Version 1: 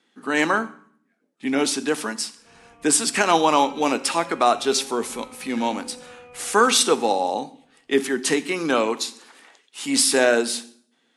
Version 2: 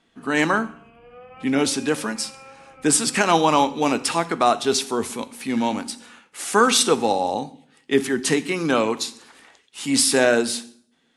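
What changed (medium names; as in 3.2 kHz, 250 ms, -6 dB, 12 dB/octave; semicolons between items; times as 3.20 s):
speech: remove high-pass 240 Hz 12 dB/octave; background: entry -2.30 s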